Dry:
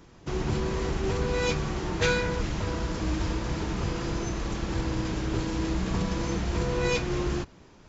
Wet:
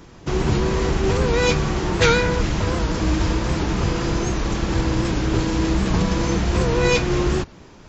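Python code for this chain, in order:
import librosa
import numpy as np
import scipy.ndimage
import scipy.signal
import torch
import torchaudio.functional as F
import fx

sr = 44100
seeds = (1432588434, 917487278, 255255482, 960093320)

y = fx.record_warp(x, sr, rpm=78.0, depth_cents=100.0)
y = F.gain(torch.from_numpy(y), 8.5).numpy()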